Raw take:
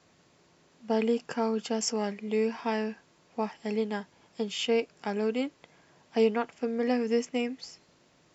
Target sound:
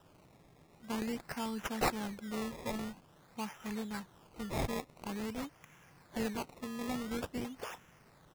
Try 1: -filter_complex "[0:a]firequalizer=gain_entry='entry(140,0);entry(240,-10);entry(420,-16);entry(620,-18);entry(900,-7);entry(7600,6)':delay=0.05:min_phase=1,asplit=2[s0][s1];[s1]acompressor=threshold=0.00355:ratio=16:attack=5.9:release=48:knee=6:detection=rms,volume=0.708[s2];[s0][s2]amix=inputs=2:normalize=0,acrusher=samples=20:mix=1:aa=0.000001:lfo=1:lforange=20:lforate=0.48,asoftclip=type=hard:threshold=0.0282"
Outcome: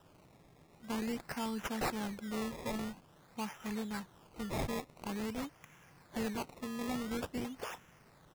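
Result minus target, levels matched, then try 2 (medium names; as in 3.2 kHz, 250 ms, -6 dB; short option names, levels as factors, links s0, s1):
compression: peak gain reduction -6 dB; hard clipper: distortion +6 dB
-filter_complex "[0:a]firequalizer=gain_entry='entry(140,0);entry(240,-10);entry(420,-16);entry(620,-18);entry(900,-7);entry(7600,6)':delay=0.05:min_phase=1,asplit=2[s0][s1];[s1]acompressor=threshold=0.00168:ratio=16:attack=5.9:release=48:knee=6:detection=rms,volume=0.708[s2];[s0][s2]amix=inputs=2:normalize=0,acrusher=samples=20:mix=1:aa=0.000001:lfo=1:lforange=20:lforate=0.48,asoftclip=type=hard:threshold=0.0596"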